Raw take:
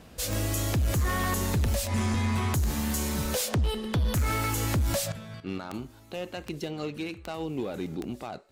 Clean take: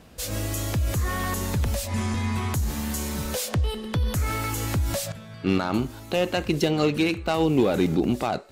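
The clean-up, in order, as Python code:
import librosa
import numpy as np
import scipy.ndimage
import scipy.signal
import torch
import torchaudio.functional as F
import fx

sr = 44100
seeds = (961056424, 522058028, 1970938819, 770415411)

y = fx.fix_declip(x, sr, threshold_db=-21.5)
y = fx.fix_declick_ar(y, sr, threshold=10.0)
y = fx.gain(y, sr, db=fx.steps((0.0, 0.0), (5.4, 12.0)))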